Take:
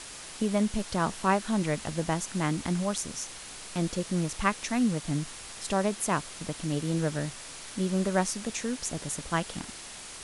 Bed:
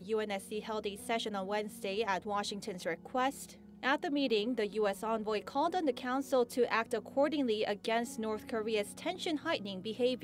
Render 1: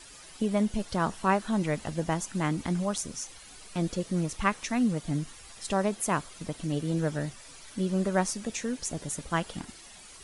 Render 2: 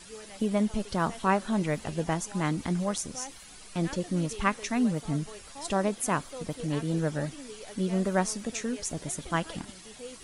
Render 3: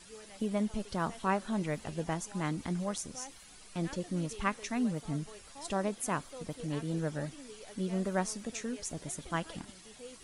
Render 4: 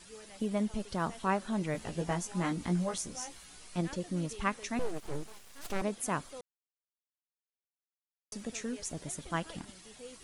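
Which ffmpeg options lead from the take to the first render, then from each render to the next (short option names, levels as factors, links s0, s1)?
-af "afftdn=nr=11:nf=-44"
-filter_complex "[1:a]volume=0.251[s0];[0:a][s0]amix=inputs=2:normalize=0"
-af "volume=0.531"
-filter_complex "[0:a]asettb=1/sr,asplit=3[s0][s1][s2];[s0]atrim=end=1.734[s3];[s1]atrim=start=1.73:end=3.81,asetpts=PTS-STARTPTS,afade=t=in:d=0.004:c=qsin,afade=t=out:st=2.076:d=0.004:c=qsin,asplit=2[s4][s5];[s5]adelay=17,volume=0.668[s6];[s4][s6]amix=inputs=2:normalize=0,atrim=end_sample=91728[s7];[s2]atrim=start=3.806[s8];[s3][s7]acrossfade=d=0.004:c1=hsin:c2=qsin[s9];[s9][s8]acrossfade=d=0.004:c1=qsin:c2=hsin,asettb=1/sr,asplit=3[s10][s11][s12];[s10]atrim=end=4.794[s13];[s11]atrim=start=4.79:end=5.82,asetpts=PTS-STARTPTS,afade=t=in:d=0.004:c=qsin,afade=t=out:st=1.026:d=0.004:c=qsin,aeval=exprs='abs(val(0))':c=same[s14];[s12]atrim=start=5.816[s15];[s13][s14]acrossfade=d=0.004:c1=hsin:c2=qsin[s16];[s16][s15]acrossfade=d=0.004:c1=qsin:c2=hsin,asplit=3[s17][s18][s19];[s17]atrim=end=6.41,asetpts=PTS-STARTPTS,afade=t=out:st=6.406:d=0.004:c=hsin[s20];[s18]atrim=start=6.41:end=8.32,asetpts=PTS-STARTPTS,volume=0[s21];[s19]atrim=start=8.32,asetpts=PTS-STARTPTS,afade=t=in:d=0.004:c=hsin[s22];[s20][s21][s22]concat=n=3:v=0:a=1"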